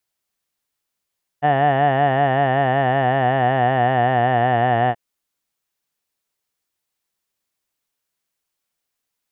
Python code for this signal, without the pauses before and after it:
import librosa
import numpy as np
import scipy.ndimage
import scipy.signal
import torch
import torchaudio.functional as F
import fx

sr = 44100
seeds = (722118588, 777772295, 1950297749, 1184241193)

y = fx.formant_vowel(sr, seeds[0], length_s=3.53, hz=142.0, glide_st=-3.0, vibrato_hz=5.3, vibrato_st=0.9, f1_hz=730.0, f2_hz=1800.0, f3_hz=2900.0)